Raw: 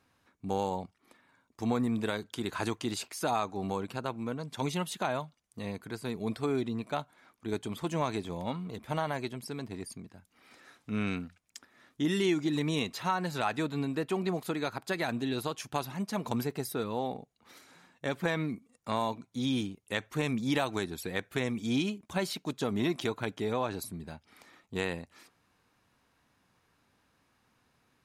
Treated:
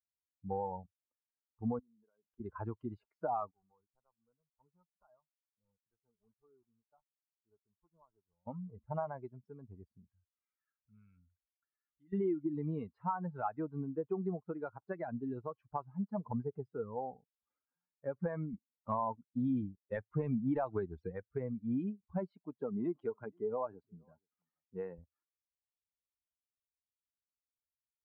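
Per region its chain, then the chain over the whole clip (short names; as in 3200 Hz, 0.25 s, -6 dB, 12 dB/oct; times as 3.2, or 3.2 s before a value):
1.79–2.4 HPF 190 Hz + compressor 12:1, threshold -46 dBFS
3.51–8.47 block floating point 3-bit + Butterworth band-stop 3000 Hz, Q 0.6 + pre-emphasis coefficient 0.9
10.05–12.13 Butterworth band-stop 660 Hz, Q 4.4 + passive tone stack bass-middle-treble 5-5-5 + fast leveller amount 50%
18.53–21.12 HPF 56 Hz + high shelf 5500 Hz +9.5 dB + sample leveller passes 1
22.29–24.99 HPF 150 Hz + echo 0.473 s -19 dB
whole clip: per-bin expansion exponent 2; LPF 1200 Hz 24 dB/oct; compressor 3:1, threshold -35 dBFS; gain +3 dB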